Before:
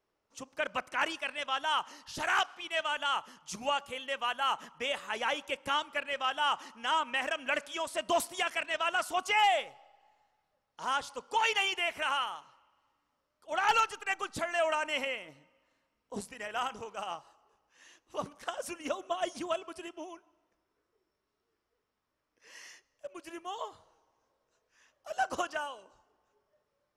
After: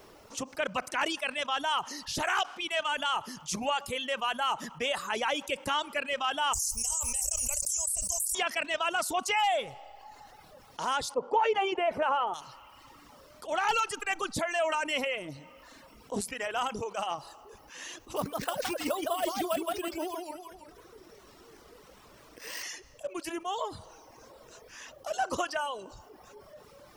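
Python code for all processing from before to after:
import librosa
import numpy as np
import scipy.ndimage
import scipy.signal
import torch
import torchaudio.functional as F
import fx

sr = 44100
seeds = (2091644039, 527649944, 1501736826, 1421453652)

y = fx.chain(x, sr, fx.cheby2_bandstop(low_hz=130.0, high_hz=3700.0, order=4, stop_db=40),
    fx.env_flatten(amount_pct=100), at=(6.53, 8.35))
y = fx.chain(y, sr, fx.lowpass(hz=1100.0, slope=6),
    fx.peak_eq(hz=500.0, db=12.5, octaves=2.6), at=(11.14, 12.34))
y = fx.chain(y, sr, fx.resample_bad(factor=4, down='none', up='hold'),
    fx.echo_warbled(ms=164, feedback_pct=33, rate_hz=2.8, cents=167, wet_db=-5.0), at=(18.16, 22.63))
y = fx.dereverb_blind(y, sr, rt60_s=0.73)
y = fx.peak_eq(y, sr, hz=1700.0, db=-3.5, octaves=1.5)
y = fx.env_flatten(y, sr, amount_pct=50)
y = y * 10.0 ** (-2.5 / 20.0)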